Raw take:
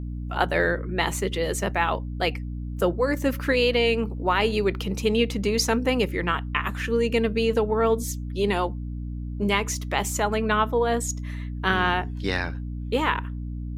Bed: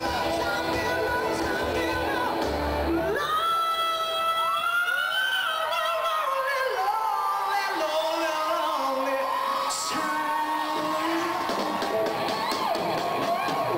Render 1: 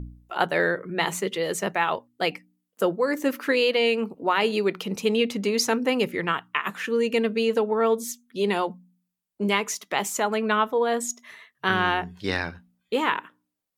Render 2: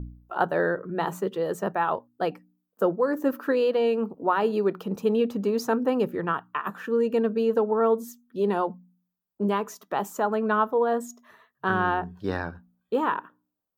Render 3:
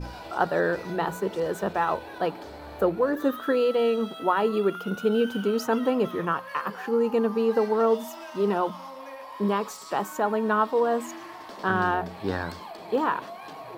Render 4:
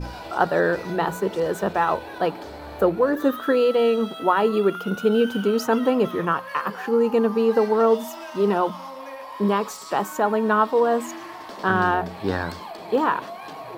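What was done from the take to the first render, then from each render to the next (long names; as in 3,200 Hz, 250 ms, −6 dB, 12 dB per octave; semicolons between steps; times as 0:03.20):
hum removal 60 Hz, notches 5
flat-topped bell 4,800 Hz −13.5 dB 2.8 octaves; notch filter 2,100 Hz, Q 5.3
mix in bed −14.5 dB
level +4 dB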